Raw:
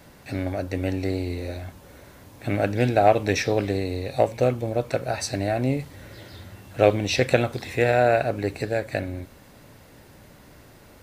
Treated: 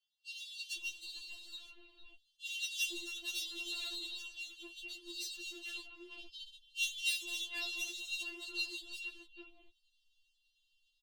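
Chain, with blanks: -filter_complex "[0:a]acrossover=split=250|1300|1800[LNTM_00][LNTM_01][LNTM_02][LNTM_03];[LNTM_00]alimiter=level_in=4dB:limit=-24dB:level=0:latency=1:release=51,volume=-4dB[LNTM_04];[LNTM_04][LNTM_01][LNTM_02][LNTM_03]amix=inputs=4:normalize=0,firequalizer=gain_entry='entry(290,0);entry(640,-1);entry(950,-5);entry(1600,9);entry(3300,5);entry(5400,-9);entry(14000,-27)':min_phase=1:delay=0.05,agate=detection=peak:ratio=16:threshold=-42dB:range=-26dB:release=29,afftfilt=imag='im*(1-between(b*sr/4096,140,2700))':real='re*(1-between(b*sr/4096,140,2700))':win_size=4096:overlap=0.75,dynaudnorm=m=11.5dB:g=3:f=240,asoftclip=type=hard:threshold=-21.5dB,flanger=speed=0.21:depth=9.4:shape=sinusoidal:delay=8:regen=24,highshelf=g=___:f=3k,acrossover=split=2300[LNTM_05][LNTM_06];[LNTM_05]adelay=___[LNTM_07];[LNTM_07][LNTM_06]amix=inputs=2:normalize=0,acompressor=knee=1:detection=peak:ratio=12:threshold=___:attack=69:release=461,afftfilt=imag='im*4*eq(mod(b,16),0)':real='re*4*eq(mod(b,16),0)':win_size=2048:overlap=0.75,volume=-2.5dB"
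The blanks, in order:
10, 450, -33dB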